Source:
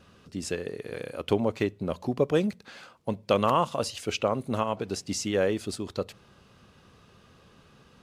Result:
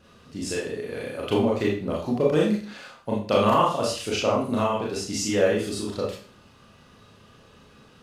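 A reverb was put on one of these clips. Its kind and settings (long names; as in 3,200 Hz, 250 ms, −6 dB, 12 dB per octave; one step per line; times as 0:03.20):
four-comb reverb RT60 0.42 s, combs from 26 ms, DRR −4.5 dB
level −1.5 dB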